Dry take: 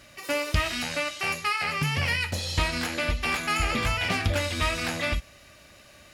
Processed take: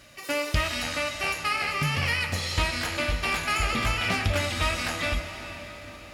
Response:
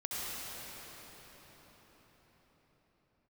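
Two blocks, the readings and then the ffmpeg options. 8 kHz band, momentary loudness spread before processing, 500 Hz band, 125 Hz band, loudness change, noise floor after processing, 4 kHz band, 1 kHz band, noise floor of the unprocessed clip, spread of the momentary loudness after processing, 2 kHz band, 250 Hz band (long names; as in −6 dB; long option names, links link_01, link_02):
+0.5 dB, 3 LU, 0.0 dB, 0.0 dB, 0.0 dB, −44 dBFS, +0.5 dB, +0.5 dB, −52 dBFS, 8 LU, +0.5 dB, −1.0 dB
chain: -filter_complex "[0:a]bandreject=frequency=82.34:width_type=h:width=4,bandreject=frequency=164.68:width_type=h:width=4,bandreject=frequency=247.02:width_type=h:width=4,bandreject=frequency=329.36:width_type=h:width=4,bandreject=frequency=411.7:width_type=h:width=4,bandreject=frequency=494.04:width_type=h:width=4,bandreject=frequency=576.38:width_type=h:width=4,bandreject=frequency=658.72:width_type=h:width=4,bandreject=frequency=741.06:width_type=h:width=4,bandreject=frequency=823.4:width_type=h:width=4,bandreject=frequency=905.74:width_type=h:width=4,bandreject=frequency=988.08:width_type=h:width=4,bandreject=frequency=1070.42:width_type=h:width=4,bandreject=frequency=1152.76:width_type=h:width=4,bandreject=frequency=1235.1:width_type=h:width=4,bandreject=frequency=1317.44:width_type=h:width=4,bandreject=frequency=1399.78:width_type=h:width=4,bandreject=frequency=1482.12:width_type=h:width=4,bandreject=frequency=1564.46:width_type=h:width=4,bandreject=frequency=1646.8:width_type=h:width=4,bandreject=frequency=1729.14:width_type=h:width=4,bandreject=frequency=1811.48:width_type=h:width=4,bandreject=frequency=1893.82:width_type=h:width=4,bandreject=frequency=1976.16:width_type=h:width=4,bandreject=frequency=2058.5:width_type=h:width=4,bandreject=frequency=2140.84:width_type=h:width=4,bandreject=frequency=2223.18:width_type=h:width=4,bandreject=frequency=2305.52:width_type=h:width=4,bandreject=frequency=2387.86:width_type=h:width=4,bandreject=frequency=2470.2:width_type=h:width=4,asplit=2[link_01][link_02];[1:a]atrim=start_sample=2205,lowshelf=frequency=100:gain=-11,adelay=130[link_03];[link_02][link_03]afir=irnorm=-1:irlink=0,volume=-12.5dB[link_04];[link_01][link_04]amix=inputs=2:normalize=0"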